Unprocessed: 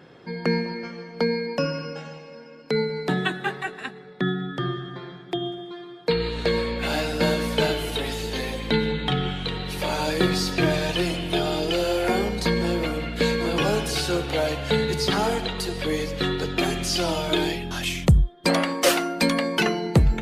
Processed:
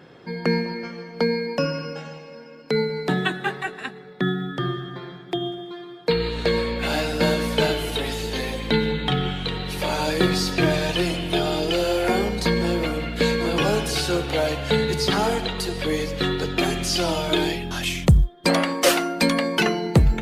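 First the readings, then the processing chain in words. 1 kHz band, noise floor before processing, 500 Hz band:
+1.5 dB, -44 dBFS, +1.5 dB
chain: short-mantissa float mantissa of 6-bit; gain +1.5 dB

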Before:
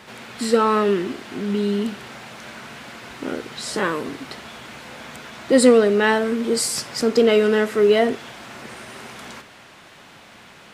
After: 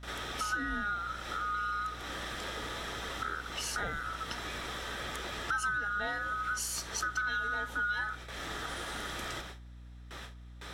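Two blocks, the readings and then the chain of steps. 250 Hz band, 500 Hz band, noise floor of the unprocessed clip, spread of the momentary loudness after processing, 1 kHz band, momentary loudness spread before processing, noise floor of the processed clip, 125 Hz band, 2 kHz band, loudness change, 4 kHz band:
-24.0 dB, -27.5 dB, -46 dBFS, 10 LU, -8.0 dB, 21 LU, -49 dBFS, -10.0 dB, -4.0 dB, -15.5 dB, -9.5 dB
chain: band-swap scrambler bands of 1000 Hz; compressor 4:1, threshold -35 dBFS, peak gain reduction 22 dB; gate with hold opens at -35 dBFS; buzz 60 Hz, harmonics 5, -49 dBFS -9 dB/oct

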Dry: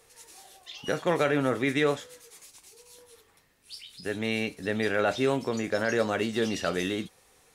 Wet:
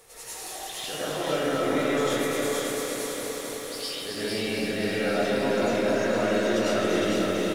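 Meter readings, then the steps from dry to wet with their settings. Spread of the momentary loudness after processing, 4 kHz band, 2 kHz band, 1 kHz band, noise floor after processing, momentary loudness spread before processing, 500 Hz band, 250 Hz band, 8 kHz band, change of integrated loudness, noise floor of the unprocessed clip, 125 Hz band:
9 LU, +5.5 dB, +1.0 dB, +3.0 dB, -38 dBFS, 18 LU, +3.5 dB, +3.0 dB, +9.5 dB, +1.5 dB, -62 dBFS, 0.0 dB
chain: high shelf 8000 Hz +5.5 dB; limiter -20.5 dBFS, peak gain reduction 9 dB; reverse; compressor 6:1, threshold -40 dBFS, peak gain reduction 13.5 dB; reverse; bell 660 Hz +2.5 dB 2.4 oct; on a send: echo 0.455 s -3 dB; on the sum: digital reverb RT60 1.2 s, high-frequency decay 0.55×, pre-delay 60 ms, DRR -10 dB; lo-fi delay 0.263 s, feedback 80%, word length 10-bit, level -6 dB; gain +2.5 dB

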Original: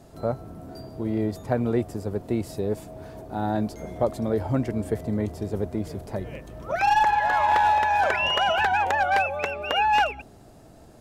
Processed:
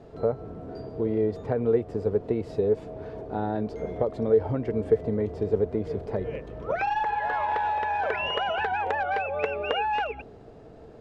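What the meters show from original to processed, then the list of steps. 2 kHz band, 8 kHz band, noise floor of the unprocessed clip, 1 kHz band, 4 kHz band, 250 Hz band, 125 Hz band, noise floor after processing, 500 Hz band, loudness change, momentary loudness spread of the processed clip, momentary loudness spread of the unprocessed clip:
-6.0 dB, under -15 dB, -50 dBFS, -6.0 dB, -7.0 dB, -3.0 dB, -3.0 dB, -48 dBFS, +3.0 dB, -3.0 dB, 9 LU, 14 LU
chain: compressor, threshold -25 dBFS, peak gain reduction 8 dB; LPF 3200 Hz 12 dB/oct; bell 450 Hz +13 dB 0.29 oct

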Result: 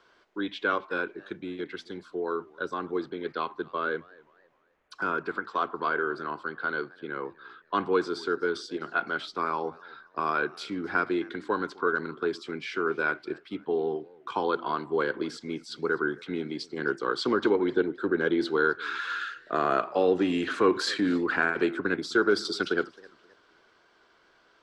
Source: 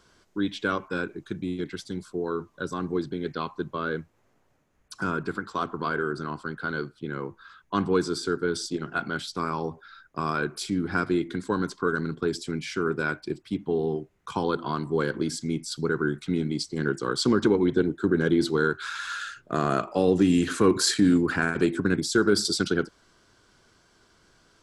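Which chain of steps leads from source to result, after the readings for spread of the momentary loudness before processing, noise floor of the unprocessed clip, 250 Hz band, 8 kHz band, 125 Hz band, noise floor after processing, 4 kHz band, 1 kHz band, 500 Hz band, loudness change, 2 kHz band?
12 LU, -66 dBFS, -5.5 dB, under -10 dB, -13.0 dB, -63 dBFS, -4.5 dB, +1.5 dB, -1.0 dB, -2.0 dB, +1.5 dB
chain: three-band isolator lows -17 dB, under 330 Hz, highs -21 dB, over 4100 Hz; warbling echo 0.26 s, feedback 34%, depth 192 cents, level -24 dB; gain +1.5 dB

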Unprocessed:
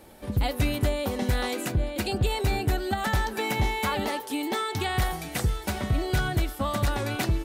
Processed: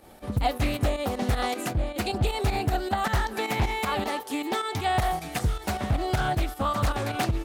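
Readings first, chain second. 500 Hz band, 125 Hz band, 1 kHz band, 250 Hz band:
0.0 dB, -0.5 dB, +3.5 dB, -0.5 dB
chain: pump 156 bpm, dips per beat 2, -9 dB, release 78 ms; small resonant body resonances 740/1200 Hz, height 8 dB; Doppler distortion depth 0.44 ms

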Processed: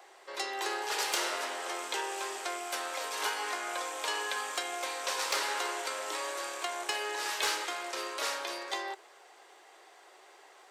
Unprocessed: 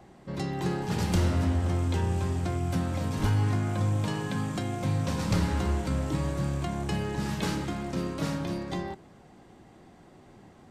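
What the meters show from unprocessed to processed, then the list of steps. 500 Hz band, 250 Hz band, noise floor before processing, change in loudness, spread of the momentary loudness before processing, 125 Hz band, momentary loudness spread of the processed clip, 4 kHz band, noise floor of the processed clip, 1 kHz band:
-3.5 dB, -20.0 dB, -54 dBFS, -4.5 dB, 7 LU, under -40 dB, 6 LU, +6.5 dB, -57 dBFS, +2.0 dB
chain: elliptic high-pass 390 Hz, stop band 70 dB; tilt shelf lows -8 dB, about 670 Hz; hard clip -22.5 dBFS, distortion -25 dB

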